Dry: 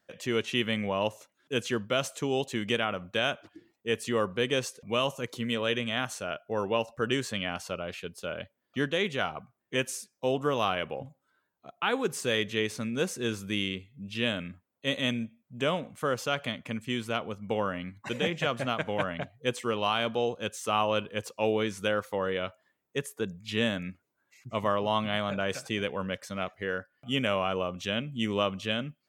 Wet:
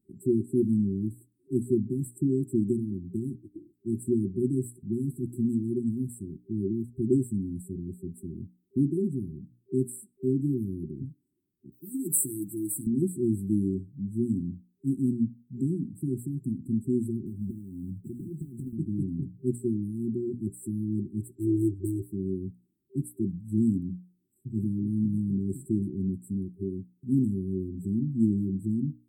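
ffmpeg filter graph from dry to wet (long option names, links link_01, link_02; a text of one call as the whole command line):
ffmpeg -i in.wav -filter_complex "[0:a]asettb=1/sr,asplit=3[link_01][link_02][link_03];[link_01]atrim=end=11.724[link_04];[link_02]atrim=start=11.72:end=12.87,asetpts=PTS-STARTPTS,afade=type=in:duration=0.004:curve=qsin,afade=type=out:start_time=1.146:duration=0.004:curve=qsin,aemphasis=mode=production:type=riaa,aecho=1:1:6.6:0.8,atrim=end_sample=50715[link_05];[link_03]atrim=start=12.866[link_06];[link_04][link_05]acrossfade=duration=0.004:curve1=hsin:curve2=qsin[link_07];[link_07][link_06]acrossfade=duration=0.004:curve1=qsin:curve2=hsin,asettb=1/sr,asplit=3[link_08][link_09][link_10];[link_08]atrim=end=17.264[link_11];[link_09]atrim=start=17.26:end=18.73,asetpts=PTS-STARTPTS,afade=type=in:duration=0.004:curve=qsin,afade=type=out:start_time=1.466:duration=0.004:curve=qsin,acompressor=threshold=-38dB:ratio=16:attack=3.2:release=140:knee=1:detection=peak,acrusher=bits=5:mode=log:mix=0:aa=0.000001,equalizer=frequency=79:width_type=o:width=3:gain=4[link_12];[link_10]atrim=start=18.726[link_13];[link_11][link_12]acrossfade=duration=0.004:curve1=hsin:curve2=qsin[link_14];[link_14][link_13]acrossfade=duration=0.004:curve1=qsin:curve2=hsin,asettb=1/sr,asplit=3[link_15][link_16][link_17];[link_15]atrim=end=21.354[link_18];[link_16]atrim=start=21.35:end=22.02,asetpts=PTS-STARTPTS,afade=type=in:duration=0.004:curve=qsin,afade=type=out:start_time=0.666:duration=0.004:curve=qsin,aecho=1:1:2.4:0.96,atrim=end_sample=29547,adynamicsmooth=sensitivity=6.5:basefreq=680,asoftclip=type=hard:threshold=-15dB[link_19];[link_17]atrim=start=22.016[link_20];[link_18][link_19]acrossfade=duration=0.004:curve1=hsin:curve2=qsin[link_21];[link_21][link_20]acrossfade=duration=0.004:curve1=qsin:curve2=hsin,afftfilt=real='re*(1-between(b*sr/4096,390,7600))':imag='im*(1-between(b*sr/4096,390,7600))':win_size=4096:overlap=0.75,tiltshelf=frequency=1400:gain=5,bandreject=frequency=60:width_type=h:width=6,bandreject=frequency=120:width_type=h:width=6,bandreject=frequency=180:width_type=h:width=6,bandreject=frequency=240:width_type=h:width=6,bandreject=frequency=300:width_type=h:width=6,volume=3.5dB" out.wav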